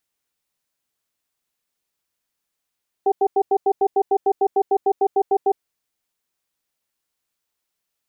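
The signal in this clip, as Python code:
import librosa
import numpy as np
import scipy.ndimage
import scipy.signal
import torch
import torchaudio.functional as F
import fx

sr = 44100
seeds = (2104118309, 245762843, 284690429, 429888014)

y = fx.cadence(sr, length_s=2.5, low_hz=399.0, high_hz=775.0, on_s=0.06, off_s=0.09, level_db=-16.5)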